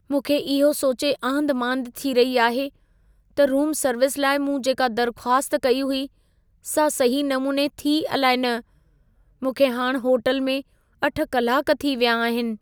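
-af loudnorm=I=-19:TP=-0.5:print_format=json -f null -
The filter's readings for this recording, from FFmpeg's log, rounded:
"input_i" : "-22.0",
"input_tp" : "-6.0",
"input_lra" : "1.3",
"input_thresh" : "-32.4",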